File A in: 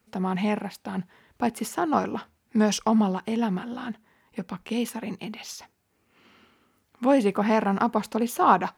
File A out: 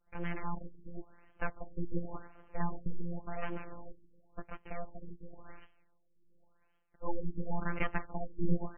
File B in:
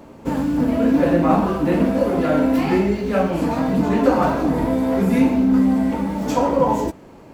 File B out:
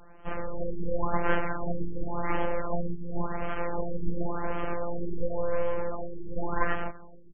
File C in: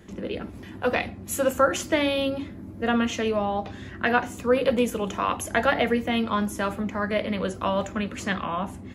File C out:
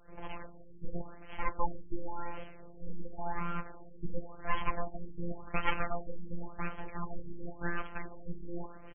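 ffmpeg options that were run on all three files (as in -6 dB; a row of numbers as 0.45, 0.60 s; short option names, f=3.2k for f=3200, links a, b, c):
-filter_complex "[0:a]equalizer=f=73:w=0.3:g=-7,asplit=7[a][b][c][d][e][f][g];[b]adelay=142,afreqshift=-79,volume=-20.5dB[h];[c]adelay=284,afreqshift=-158,volume=-24.4dB[i];[d]adelay=426,afreqshift=-237,volume=-28.3dB[j];[e]adelay=568,afreqshift=-316,volume=-32.1dB[k];[f]adelay=710,afreqshift=-395,volume=-36dB[l];[g]adelay=852,afreqshift=-474,volume=-39.9dB[m];[a][h][i][j][k][l][m]amix=inputs=7:normalize=0,aresample=16000,aeval=exprs='abs(val(0))':c=same,aresample=44100,afftfilt=real='hypot(re,im)*cos(PI*b)':imag='0':win_size=1024:overlap=0.75,afftfilt=real='re*lt(b*sr/1024,460*pow(3300/460,0.5+0.5*sin(2*PI*0.92*pts/sr)))':imag='im*lt(b*sr/1024,460*pow(3300/460,0.5+0.5*sin(2*PI*0.92*pts/sr)))':win_size=1024:overlap=0.75,volume=-2.5dB"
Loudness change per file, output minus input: -15.5, -14.5, -15.0 LU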